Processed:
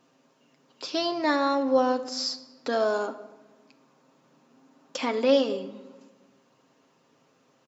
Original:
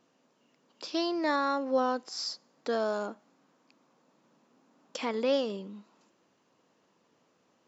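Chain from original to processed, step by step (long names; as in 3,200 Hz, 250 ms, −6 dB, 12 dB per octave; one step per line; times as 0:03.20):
comb filter 7.5 ms, depth 49%
convolution reverb RT60 1.2 s, pre-delay 7 ms, DRR 11 dB
level +4 dB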